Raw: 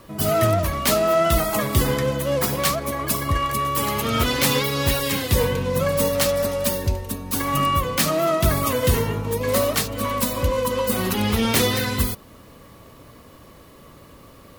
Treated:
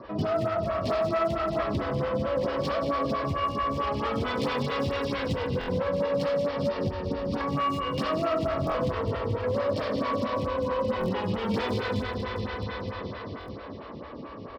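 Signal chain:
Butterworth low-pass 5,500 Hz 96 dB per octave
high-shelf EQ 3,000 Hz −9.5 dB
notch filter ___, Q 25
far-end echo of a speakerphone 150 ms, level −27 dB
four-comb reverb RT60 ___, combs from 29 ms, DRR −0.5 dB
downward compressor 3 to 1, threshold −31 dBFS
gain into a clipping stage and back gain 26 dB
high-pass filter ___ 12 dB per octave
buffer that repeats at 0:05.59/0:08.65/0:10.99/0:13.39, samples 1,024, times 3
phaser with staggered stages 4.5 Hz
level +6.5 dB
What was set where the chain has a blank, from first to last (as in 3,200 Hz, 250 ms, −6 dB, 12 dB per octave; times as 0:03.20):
2,100 Hz, 3.7 s, 62 Hz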